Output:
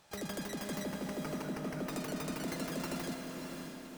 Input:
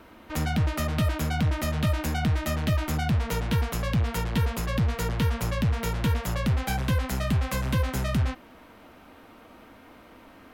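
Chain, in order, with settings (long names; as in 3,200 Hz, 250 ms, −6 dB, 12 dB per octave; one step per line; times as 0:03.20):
first-order pre-emphasis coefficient 0.9
time-frequency box erased 0:02.23–0:05.00, 580–9,600 Hz
parametric band 5,300 Hz −6 dB 1.6 octaves
in parallel at −5.5 dB: sample-rate reduction 1,400 Hz, jitter 0%
on the sum: change of speed 2.65×
on a send: feedback delay with all-pass diffusion 585 ms, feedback 44%, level −5.5 dB
on the sum: spring reverb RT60 3.8 s, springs 31 ms, chirp 30 ms, DRR 5.5 dB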